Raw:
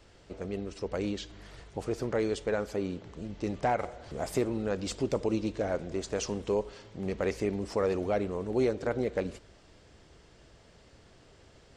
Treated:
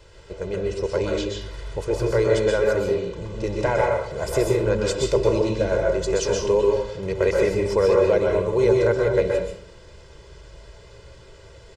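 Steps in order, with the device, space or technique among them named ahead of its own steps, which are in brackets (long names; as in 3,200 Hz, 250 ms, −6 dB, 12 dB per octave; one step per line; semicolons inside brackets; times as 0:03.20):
microphone above a desk (comb filter 2 ms, depth 85%; convolution reverb RT60 0.60 s, pre-delay 119 ms, DRR −1 dB)
level +4.5 dB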